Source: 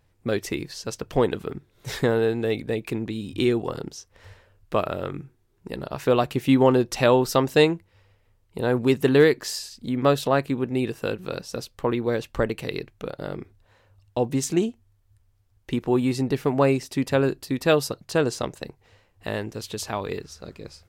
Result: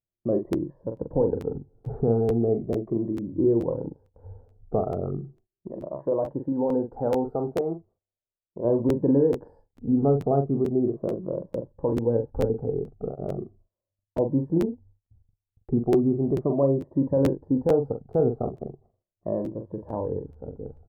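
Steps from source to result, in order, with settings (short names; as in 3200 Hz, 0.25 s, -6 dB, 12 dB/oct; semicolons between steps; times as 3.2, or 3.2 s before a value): moving spectral ripple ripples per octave 1.2, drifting -0.37 Hz, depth 12 dB; inverse Chebyshev low-pass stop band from 2500 Hz, stop band 60 dB; limiter -14 dBFS, peak gain reduction 8.5 dB; 5.7–8.65 low shelf 280 Hz -10.5 dB; gate -54 dBFS, range -29 dB; doubler 43 ms -7 dB; crackling interface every 0.44 s, samples 512, repeat, from 0.52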